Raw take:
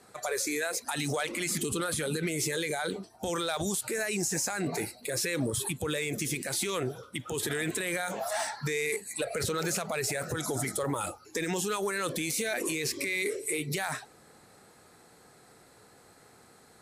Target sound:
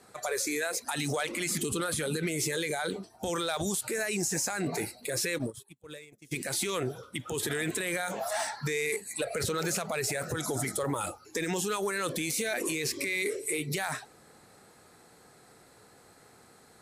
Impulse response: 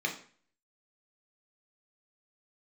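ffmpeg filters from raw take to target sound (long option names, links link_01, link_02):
-filter_complex "[0:a]asplit=3[link_01][link_02][link_03];[link_01]afade=type=out:start_time=5.37:duration=0.02[link_04];[link_02]agate=range=-37dB:threshold=-28dB:ratio=16:detection=peak,afade=type=in:start_time=5.37:duration=0.02,afade=type=out:start_time=6.31:duration=0.02[link_05];[link_03]afade=type=in:start_time=6.31:duration=0.02[link_06];[link_04][link_05][link_06]amix=inputs=3:normalize=0"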